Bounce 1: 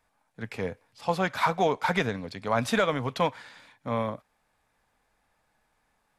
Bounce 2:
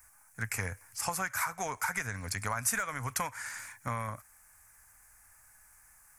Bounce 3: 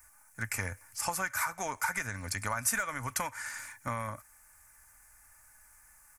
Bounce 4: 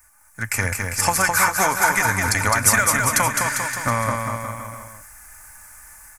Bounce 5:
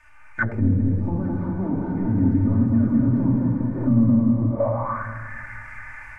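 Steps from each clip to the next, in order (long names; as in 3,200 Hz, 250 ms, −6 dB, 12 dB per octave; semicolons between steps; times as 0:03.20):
drawn EQ curve 100 Hz 0 dB, 160 Hz −12 dB, 470 Hz −17 dB, 1,500 Hz +1 dB, 2,200 Hz −2 dB, 3,600 Hz −19 dB, 6,100 Hz +5 dB, 8,900 Hz +8 dB; downward compressor 10 to 1, threshold −40 dBFS, peak gain reduction 17 dB; high-shelf EQ 6,000 Hz +9.5 dB; level +9 dB
comb filter 3.4 ms, depth 32%
automatic gain control gain up to 9.5 dB; on a send: bouncing-ball delay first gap 210 ms, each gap 0.9×, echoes 5; on the sum: level +4 dB
rectangular room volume 1,400 cubic metres, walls mixed, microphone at 2.6 metres; soft clipping −12 dBFS, distortion −12 dB; envelope-controlled low-pass 260–3,000 Hz down, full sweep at −17 dBFS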